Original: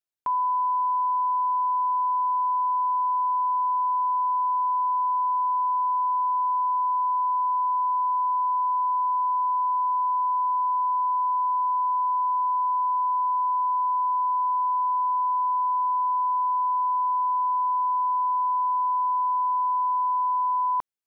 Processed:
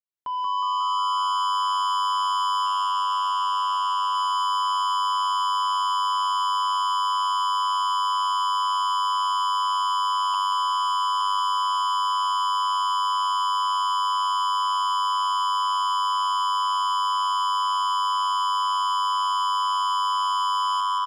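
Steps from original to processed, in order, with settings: fade-in on the opening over 1.08 s; feedback delay 313 ms, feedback 42%, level -10 dB; 2.66–4.15 s: AM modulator 190 Hz, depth 45%; 10.34–11.21 s: steep high-pass 840 Hz 48 dB/octave; in parallel at +1 dB: peak limiter -28 dBFS, peak gain reduction 11 dB; on the sum: saturation -27.5 dBFS, distortion -10 dB; on a send: frequency-shifting echo 181 ms, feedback 55%, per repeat +98 Hz, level -4.5 dB; on the sum: trim +3 dB

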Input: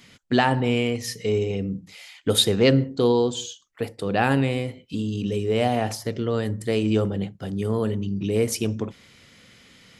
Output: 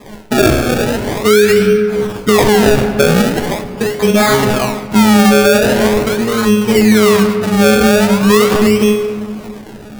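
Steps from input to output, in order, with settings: low-pass 7.7 kHz 24 dB/octave; in parallel at -2 dB: compression, threshold -31 dBFS, peak gain reduction 16.5 dB; on the sum: feedback comb 210 Hz, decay 0.49 s, harmonics all, mix 100%; decimation with a swept rate 30×, swing 100% 0.42 Hz; on a send at -9.5 dB: reverberation RT60 2.1 s, pre-delay 6 ms; on the sum: loudness maximiser +29.5 dB; trim -1 dB

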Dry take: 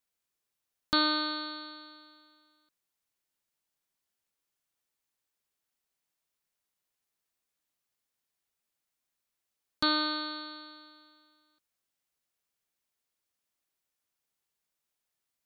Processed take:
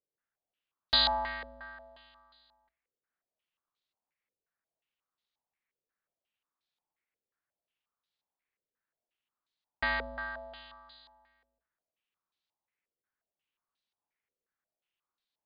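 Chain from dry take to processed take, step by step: hum notches 60/120/180/240/300 Hz; ring modulator 360 Hz; on a send at -22 dB: reverberation RT60 1.2 s, pre-delay 38 ms; on the sum: step-sequenced low-pass 5.6 Hz 480–3900 Hz; trim -2.5 dB

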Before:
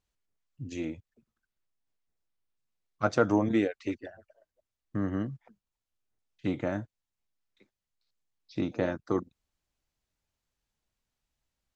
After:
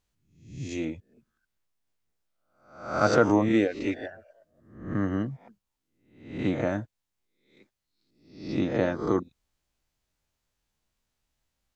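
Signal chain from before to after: reverse spectral sustain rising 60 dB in 0.58 s; 3.83–5.05 s: dynamic bell 1.9 kHz, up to +4 dB, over -50 dBFS, Q 0.81; trim +2.5 dB

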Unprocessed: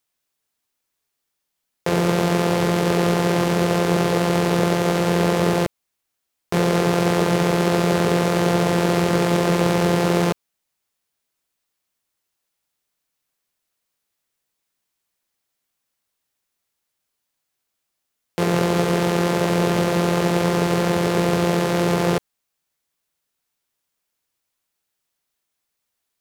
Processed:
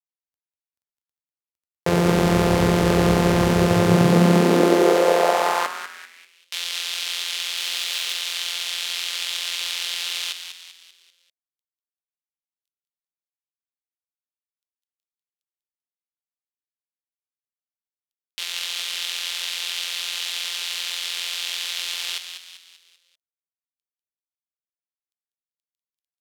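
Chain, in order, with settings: 7.57–8.13 s: jump at every zero crossing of -23.5 dBFS; bit crusher 11-bit; on a send: frequency-shifting echo 195 ms, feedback 47%, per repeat -140 Hz, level -8 dB; on the sum: high-pass sweep 68 Hz -> 3.3 kHz, 3.52–6.54 s

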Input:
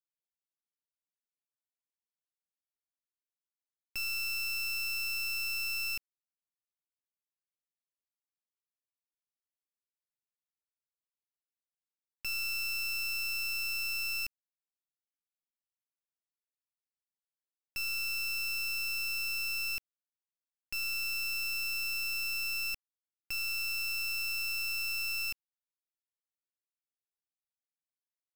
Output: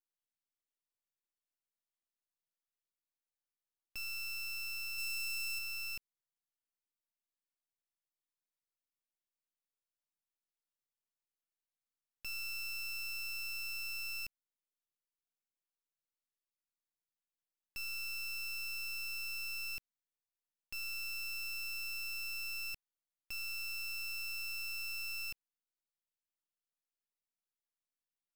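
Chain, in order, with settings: 4.98–5.59 s: high-pass 930 Hz 12 dB/octave; half-wave rectifier; trim -1 dB

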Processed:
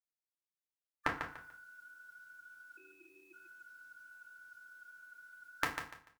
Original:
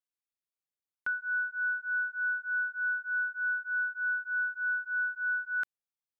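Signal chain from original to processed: spectral gate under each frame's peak -20 dB weak; FDN reverb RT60 0.41 s, low-frequency decay 1.35×, high-frequency decay 0.8×, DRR -1 dB; 2.77–3.33 s: ring modulator 1.1 kHz; on a send: feedback delay 146 ms, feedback 25%, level -7.5 dB; on the sum: trim +17 dB

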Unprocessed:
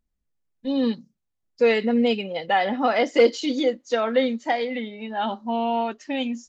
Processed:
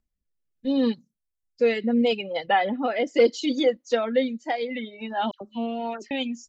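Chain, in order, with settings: 2.48–3.07 s: low-pass 3.8 kHz 24 dB/octave; reverb removal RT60 0.77 s; 5.31–6.11 s: phase dispersion lows, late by 101 ms, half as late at 1.8 kHz; rotary cabinet horn 0.75 Hz; trim +1.5 dB

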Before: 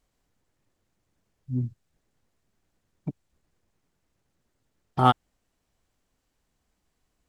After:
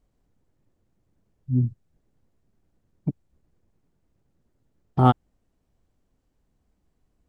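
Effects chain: tilt shelf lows +7 dB, about 770 Hz

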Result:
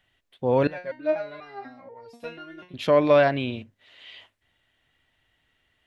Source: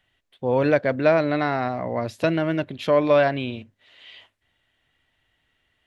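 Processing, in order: 0.67–2.74 s: resonator arpeggio 4.1 Hz 180–460 Hz

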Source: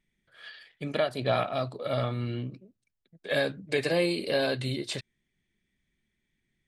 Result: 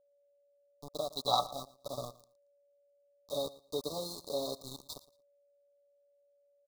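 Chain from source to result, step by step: time-frequency box 1.10–1.40 s, 720–6500 Hz +11 dB; Chebyshev shaper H 3 -16 dB, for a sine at -7 dBFS; high-pass 380 Hz 6 dB/octave; treble shelf 7.6 kHz -4.5 dB; comb 7 ms, depth 70%; dynamic bell 3.6 kHz, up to +3 dB, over -53 dBFS, Q 1.9; small samples zeroed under -34 dBFS; Chebyshev band-stop 1.2–3.7 kHz, order 5; whistle 570 Hz -66 dBFS; on a send: feedback delay 114 ms, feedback 20%, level -19.5 dB; on the sum: trim -3 dB

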